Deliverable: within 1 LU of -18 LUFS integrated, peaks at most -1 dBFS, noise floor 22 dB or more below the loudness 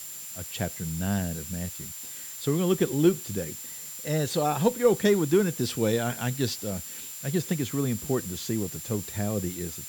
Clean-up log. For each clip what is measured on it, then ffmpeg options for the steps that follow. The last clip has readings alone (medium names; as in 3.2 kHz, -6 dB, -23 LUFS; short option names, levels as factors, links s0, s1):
steady tone 7.3 kHz; tone level -41 dBFS; noise floor -40 dBFS; noise floor target -50 dBFS; loudness -28.0 LUFS; peak level -9.5 dBFS; loudness target -18.0 LUFS
-> -af "bandreject=f=7300:w=30"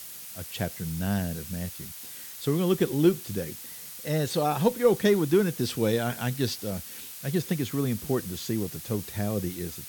steady tone not found; noise floor -42 dBFS; noise floor target -50 dBFS
-> -af "afftdn=nr=8:nf=-42"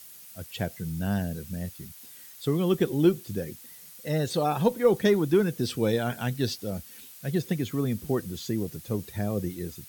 noise floor -48 dBFS; noise floor target -50 dBFS
-> -af "afftdn=nr=6:nf=-48"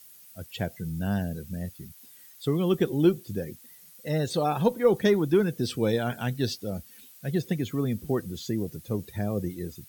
noise floor -52 dBFS; loudness -28.0 LUFS; peak level -9.5 dBFS; loudness target -18.0 LUFS
-> -af "volume=3.16,alimiter=limit=0.891:level=0:latency=1"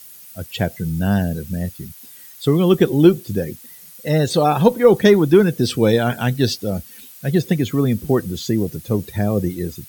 loudness -18.0 LUFS; peak level -1.0 dBFS; noise floor -42 dBFS